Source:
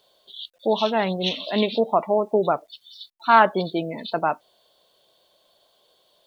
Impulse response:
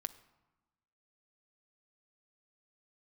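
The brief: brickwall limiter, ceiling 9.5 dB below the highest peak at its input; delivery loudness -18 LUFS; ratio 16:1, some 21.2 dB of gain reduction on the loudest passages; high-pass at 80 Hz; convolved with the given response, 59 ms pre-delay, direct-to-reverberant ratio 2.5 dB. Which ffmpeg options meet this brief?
-filter_complex "[0:a]highpass=80,acompressor=threshold=0.0316:ratio=16,alimiter=level_in=1.33:limit=0.0631:level=0:latency=1,volume=0.75,asplit=2[s0][s1];[1:a]atrim=start_sample=2205,adelay=59[s2];[s1][s2]afir=irnorm=-1:irlink=0,volume=0.944[s3];[s0][s3]amix=inputs=2:normalize=0,volume=8.41"

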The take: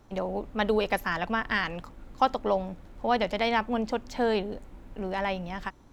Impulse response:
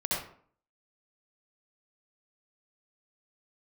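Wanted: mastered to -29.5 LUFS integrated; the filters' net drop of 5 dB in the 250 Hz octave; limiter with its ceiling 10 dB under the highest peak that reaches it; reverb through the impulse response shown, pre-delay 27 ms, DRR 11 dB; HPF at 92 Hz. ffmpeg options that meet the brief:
-filter_complex "[0:a]highpass=92,equalizer=f=250:t=o:g=-6,alimiter=limit=0.1:level=0:latency=1,asplit=2[s0][s1];[1:a]atrim=start_sample=2205,adelay=27[s2];[s1][s2]afir=irnorm=-1:irlink=0,volume=0.112[s3];[s0][s3]amix=inputs=2:normalize=0,volume=1.41"

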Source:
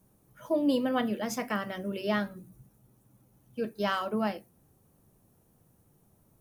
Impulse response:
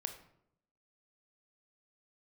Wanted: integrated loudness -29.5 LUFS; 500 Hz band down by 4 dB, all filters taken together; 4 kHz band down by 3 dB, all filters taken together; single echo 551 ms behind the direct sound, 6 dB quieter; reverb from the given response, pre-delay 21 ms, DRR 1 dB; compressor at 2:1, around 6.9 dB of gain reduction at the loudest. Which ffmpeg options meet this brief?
-filter_complex "[0:a]equalizer=f=500:t=o:g=-5,equalizer=f=4000:t=o:g=-4.5,acompressor=threshold=0.0158:ratio=2,aecho=1:1:551:0.501,asplit=2[s0][s1];[1:a]atrim=start_sample=2205,adelay=21[s2];[s1][s2]afir=irnorm=-1:irlink=0,volume=1[s3];[s0][s3]amix=inputs=2:normalize=0,volume=2"

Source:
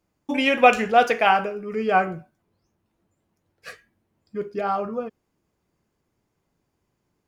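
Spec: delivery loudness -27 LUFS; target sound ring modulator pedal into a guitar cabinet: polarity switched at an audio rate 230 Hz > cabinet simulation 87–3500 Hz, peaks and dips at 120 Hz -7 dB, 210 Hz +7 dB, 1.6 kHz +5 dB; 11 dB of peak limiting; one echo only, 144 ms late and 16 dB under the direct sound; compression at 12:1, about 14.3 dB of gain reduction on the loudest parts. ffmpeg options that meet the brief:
-af "acompressor=threshold=0.0631:ratio=12,alimiter=level_in=1.12:limit=0.0631:level=0:latency=1,volume=0.891,aecho=1:1:144:0.158,aeval=exprs='val(0)*sgn(sin(2*PI*230*n/s))':c=same,highpass=87,equalizer=f=120:t=q:w=4:g=-7,equalizer=f=210:t=q:w=4:g=7,equalizer=f=1600:t=q:w=4:g=5,lowpass=f=3500:w=0.5412,lowpass=f=3500:w=1.3066,volume=2.24"

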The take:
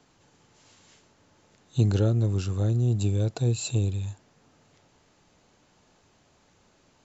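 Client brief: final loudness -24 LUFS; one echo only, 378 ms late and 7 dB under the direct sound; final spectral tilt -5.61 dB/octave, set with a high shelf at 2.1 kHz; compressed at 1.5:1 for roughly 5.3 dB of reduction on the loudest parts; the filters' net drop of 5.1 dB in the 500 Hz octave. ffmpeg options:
-af "equalizer=f=500:t=o:g=-7,highshelf=f=2100:g=4,acompressor=threshold=0.0224:ratio=1.5,aecho=1:1:378:0.447,volume=2"

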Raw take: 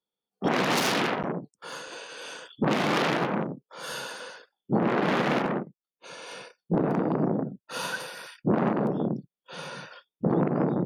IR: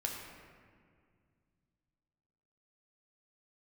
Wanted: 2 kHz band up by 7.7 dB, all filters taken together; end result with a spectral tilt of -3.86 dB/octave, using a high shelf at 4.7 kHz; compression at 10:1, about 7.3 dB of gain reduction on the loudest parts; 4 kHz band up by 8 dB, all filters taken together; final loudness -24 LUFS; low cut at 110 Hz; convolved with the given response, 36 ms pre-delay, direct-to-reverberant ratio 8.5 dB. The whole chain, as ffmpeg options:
-filter_complex "[0:a]highpass=110,equalizer=f=2000:t=o:g=7.5,equalizer=f=4000:t=o:g=4,highshelf=f=4700:g=7.5,acompressor=threshold=0.0631:ratio=10,asplit=2[s0][s1];[1:a]atrim=start_sample=2205,adelay=36[s2];[s1][s2]afir=irnorm=-1:irlink=0,volume=0.299[s3];[s0][s3]amix=inputs=2:normalize=0,volume=2"

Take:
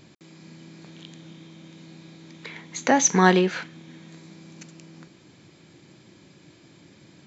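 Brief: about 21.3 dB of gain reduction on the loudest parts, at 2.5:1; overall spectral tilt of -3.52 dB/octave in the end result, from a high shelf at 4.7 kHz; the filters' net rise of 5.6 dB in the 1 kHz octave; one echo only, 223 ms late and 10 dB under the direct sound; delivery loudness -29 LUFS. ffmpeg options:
-af "equalizer=f=1000:t=o:g=7,highshelf=f=4700:g=4,acompressor=threshold=0.00708:ratio=2.5,aecho=1:1:223:0.316,volume=5.01"

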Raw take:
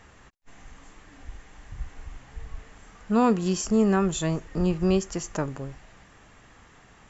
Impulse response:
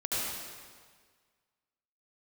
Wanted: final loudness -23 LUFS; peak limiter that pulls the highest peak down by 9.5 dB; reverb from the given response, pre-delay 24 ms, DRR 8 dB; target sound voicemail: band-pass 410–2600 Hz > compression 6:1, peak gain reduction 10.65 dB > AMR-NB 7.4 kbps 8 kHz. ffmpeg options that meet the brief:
-filter_complex "[0:a]alimiter=limit=0.106:level=0:latency=1,asplit=2[s0][s1];[1:a]atrim=start_sample=2205,adelay=24[s2];[s1][s2]afir=irnorm=-1:irlink=0,volume=0.168[s3];[s0][s3]amix=inputs=2:normalize=0,highpass=410,lowpass=2600,acompressor=threshold=0.0141:ratio=6,volume=11.2" -ar 8000 -c:a libopencore_amrnb -b:a 7400

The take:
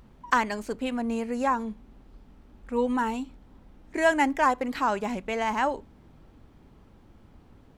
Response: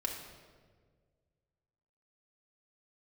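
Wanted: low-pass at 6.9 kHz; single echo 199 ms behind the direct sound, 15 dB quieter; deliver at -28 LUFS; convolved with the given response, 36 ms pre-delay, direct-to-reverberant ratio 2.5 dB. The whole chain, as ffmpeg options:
-filter_complex "[0:a]lowpass=6900,aecho=1:1:199:0.178,asplit=2[s0][s1];[1:a]atrim=start_sample=2205,adelay=36[s2];[s1][s2]afir=irnorm=-1:irlink=0,volume=0.596[s3];[s0][s3]amix=inputs=2:normalize=0,volume=0.75"

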